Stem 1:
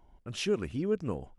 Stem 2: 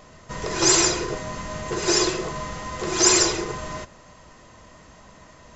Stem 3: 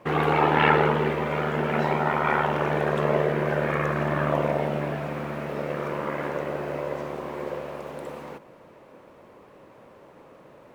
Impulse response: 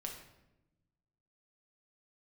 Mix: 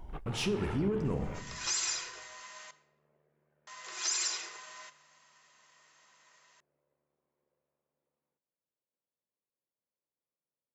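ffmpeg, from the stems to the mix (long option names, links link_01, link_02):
-filter_complex "[0:a]alimiter=limit=-23.5dB:level=0:latency=1,volume=0dB,asplit=3[link_01][link_02][link_03];[link_02]volume=-9dB[link_04];[1:a]highpass=1400,adelay=1050,volume=-19dB,asplit=3[link_05][link_06][link_07];[link_05]atrim=end=2.71,asetpts=PTS-STARTPTS,afade=type=out:start_time=2.706:duration=0.004:curve=hsin[link_08];[link_06]atrim=start=2.71:end=3.67,asetpts=PTS-STARTPTS,volume=0[link_09];[link_07]atrim=start=3.67,asetpts=PTS-STARTPTS,afade=type=in:duration=0.004:curve=hsin[link_10];[link_08][link_09][link_10]concat=n=3:v=0:a=1,asplit=2[link_11][link_12];[link_12]volume=-4.5dB[link_13];[2:a]highpass=72,volume=-19.5dB[link_14];[link_03]apad=whole_len=474048[link_15];[link_14][link_15]sidechaingate=range=-40dB:threshold=-54dB:ratio=16:detection=peak[link_16];[link_01][link_16]amix=inputs=2:normalize=0,asoftclip=type=tanh:threshold=-31.5dB,alimiter=level_in=17.5dB:limit=-24dB:level=0:latency=1:release=395,volume=-17.5dB,volume=0dB[link_17];[3:a]atrim=start_sample=2205[link_18];[link_04][link_13]amix=inputs=2:normalize=0[link_19];[link_19][link_18]afir=irnorm=-1:irlink=0[link_20];[link_11][link_17][link_20]amix=inputs=3:normalize=0,lowshelf=frequency=140:gain=8,acontrast=75,alimiter=limit=-22.5dB:level=0:latency=1:release=85"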